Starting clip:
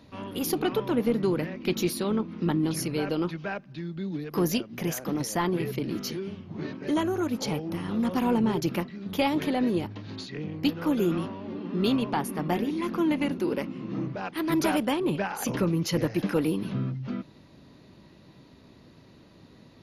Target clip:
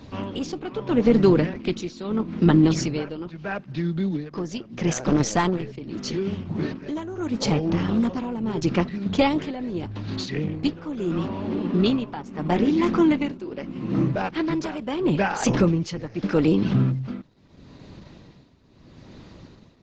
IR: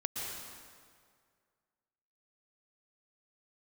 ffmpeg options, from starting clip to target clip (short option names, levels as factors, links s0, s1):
-filter_complex "[0:a]lowshelf=f=70:g=10,asplit=3[s0][s1][s2];[s0]afade=t=out:st=4.96:d=0.02[s3];[s1]aeval=exprs='0.158*(cos(1*acos(clip(val(0)/0.158,-1,1)))-cos(1*PI/2))+0.02*(cos(2*acos(clip(val(0)/0.158,-1,1)))-cos(2*PI/2))+0.0158*(cos(6*acos(clip(val(0)/0.158,-1,1)))-cos(6*PI/2))+0.00126*(cos(7*acos(clip(val(0)/0.158,-1,1)))-cos(7*PI/2))+0.00355*(cos(8*acos(clip(val(0)/0.158,-1,1)))-cos(8*PI/2))':c=same,afade=t=in:st=4.96:d=0.02,afade=t=out:st=5.61:d=0.02[s4];[s2]afade=t=in:st=5.61:d=0.02[s5];[s3][s4][s5]amix=inputs=3:normalize=0,tremolo=f=0.78:d=0.83,volume=2.82" -ar 48000 -c:a libopus -b:a 12k